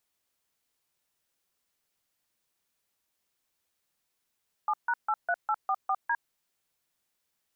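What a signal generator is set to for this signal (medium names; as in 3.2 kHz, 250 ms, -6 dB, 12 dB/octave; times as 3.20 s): DTMF "7#83844D", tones 56 ms, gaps 146 ms, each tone -27 dBFS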